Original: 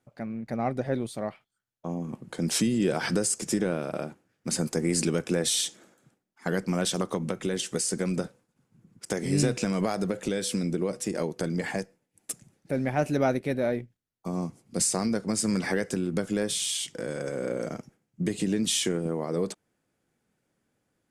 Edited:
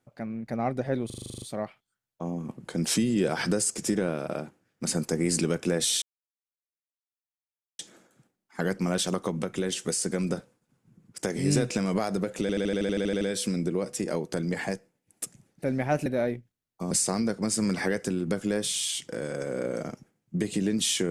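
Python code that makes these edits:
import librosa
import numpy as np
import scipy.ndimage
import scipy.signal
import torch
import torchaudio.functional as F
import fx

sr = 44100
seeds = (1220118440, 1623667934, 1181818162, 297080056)

y = fx.edit(x, sr, fx.stutter(start_s=1.06, slice_s=0.04, count=10),
    fx.insert_silence(at_s=5.66, length_s=1.77),
    fx.stutter(start_s=10.28, slice_s=0.08, count=11),
    fx.cut(start_s=13.13, length_s=0.38),
    fx.cut(start_s=14.36, length_s=0.41), tone=tone)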